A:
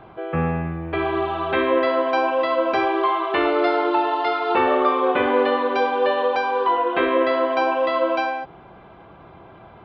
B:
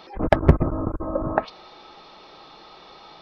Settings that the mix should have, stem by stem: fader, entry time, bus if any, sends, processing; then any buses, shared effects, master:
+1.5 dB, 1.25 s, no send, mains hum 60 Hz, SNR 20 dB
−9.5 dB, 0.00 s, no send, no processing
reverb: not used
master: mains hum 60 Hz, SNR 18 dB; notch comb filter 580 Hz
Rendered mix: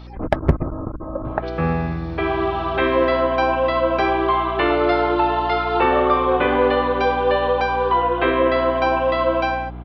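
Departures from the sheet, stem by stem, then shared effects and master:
stem B −9.5 dB → −2.0 dB
master: missing notch comb filter 580 Hz

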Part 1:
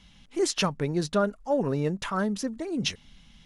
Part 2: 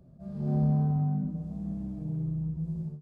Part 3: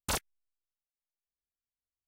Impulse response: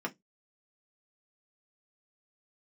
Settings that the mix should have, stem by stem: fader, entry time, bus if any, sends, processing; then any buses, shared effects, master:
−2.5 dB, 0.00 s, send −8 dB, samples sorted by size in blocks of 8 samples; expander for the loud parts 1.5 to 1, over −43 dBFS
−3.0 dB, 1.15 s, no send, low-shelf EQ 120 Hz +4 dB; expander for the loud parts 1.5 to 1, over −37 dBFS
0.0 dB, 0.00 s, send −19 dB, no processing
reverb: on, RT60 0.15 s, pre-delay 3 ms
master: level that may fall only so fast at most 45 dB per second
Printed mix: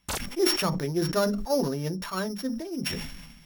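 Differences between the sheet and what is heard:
stem 2: muted
stem 3: send off

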